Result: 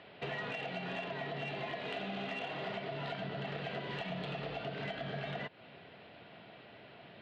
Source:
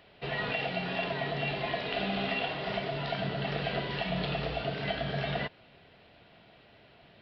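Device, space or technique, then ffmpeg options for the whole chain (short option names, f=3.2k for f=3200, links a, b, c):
AM radio: -af "highpass=120,lowpass=3.6k,acompressor=threshold=-40dB:ratio=8,asoftclip=type=tanh:threshold=-33.5dB,volume=4dB"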